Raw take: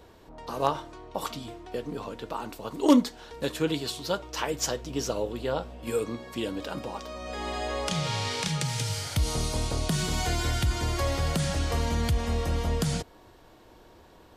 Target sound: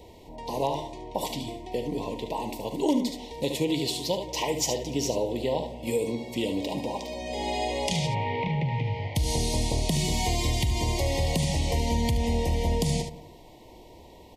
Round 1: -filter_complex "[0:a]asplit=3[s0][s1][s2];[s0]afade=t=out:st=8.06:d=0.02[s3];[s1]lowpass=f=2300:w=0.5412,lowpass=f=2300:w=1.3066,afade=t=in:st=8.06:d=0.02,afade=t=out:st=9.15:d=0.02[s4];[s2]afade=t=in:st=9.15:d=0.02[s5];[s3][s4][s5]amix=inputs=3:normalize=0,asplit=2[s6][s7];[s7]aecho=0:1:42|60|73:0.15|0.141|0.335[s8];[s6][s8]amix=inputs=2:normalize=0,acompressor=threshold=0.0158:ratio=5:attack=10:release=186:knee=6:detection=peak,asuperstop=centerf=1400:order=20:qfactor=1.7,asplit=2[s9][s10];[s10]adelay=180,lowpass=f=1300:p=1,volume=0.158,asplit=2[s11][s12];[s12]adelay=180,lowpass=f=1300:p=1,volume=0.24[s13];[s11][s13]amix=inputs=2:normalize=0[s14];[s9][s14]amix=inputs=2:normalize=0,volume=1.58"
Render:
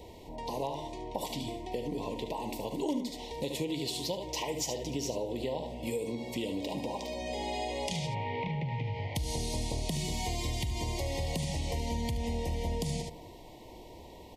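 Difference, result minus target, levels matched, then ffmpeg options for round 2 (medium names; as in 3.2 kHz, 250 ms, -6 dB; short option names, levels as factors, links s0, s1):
compression: peak gain reduction +8.5 dB
-filter_complex "[0:a]asplit=3[s0][s1][s2];[s0]afade=t=out:st=8.06:d=0.02[s3];[s1]lowpass=f=2300:w=0.5412,lowpass=f=2300:w=1.3066,afade=t=in:st=8.06:d=0.02,afade=t=out:st=9.15:d=0.02[s4];[s2]afade=t=in:st=9.15:d=0.02[s5];[s3][s4][s5]amix=inputs=3:normalize=0,asplit=2[s6][s7];[s7]aecho=0:1:42|60|73:0.15|0.141|0.335[s8];[s6][s8]amix=inputs=2:normalize=0,acompressor=threshold=0.0531:ratio=5:attack=10:release=186:knee=6:detection=peak,asuperstop=centerf=1400:order=20:qfactor=1.7,asplit=2[s9][s10];[s10]adelay=180,lowpass=f=1300:p=1,volume=0.158,asplit=2[s11][s12];[s12]adelay=180,lowpass=f=1300:p=1,volume=0.24[s13];[s11][s13]amix=inputs=2:normalize=0[s14];[s9][s14]amix=inputs=2:normalize=0,volume=1.58"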